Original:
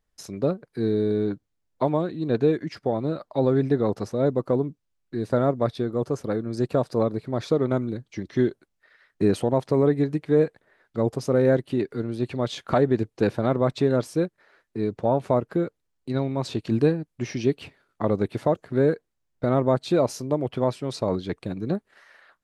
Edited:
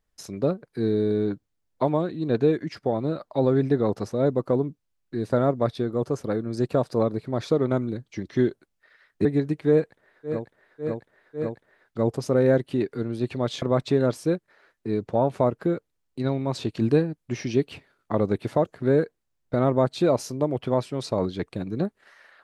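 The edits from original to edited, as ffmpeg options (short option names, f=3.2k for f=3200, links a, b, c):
-filter_complex "[0:a]asplit=6[a][b][c][d][e][f];[a]atrim=end=9.252[g];[b]atrim=start=9.888:end=11.11[h];[c]atrim=start=10.32:end=11.11[i];[d]atrim=start=10.32:end=11.11[j];[e]atrim=start=10.32:end=12.612[k];[f]atrim=start=13.518[l];[g][h]acrossfade=d=0.004:c1=hsin:c2=hsin[m];[m][i]acrossfade=d=0.24:c1=tri:c2=tri[n];[n][j]acrossfade=d=0.24:c1=tri:c2=tri[o];[o][k]acrossfade=d=0.24:c1=tri:c2=tri[p];[p][l]acrossfade=d=0.004:c1=hsin:c2=hsin"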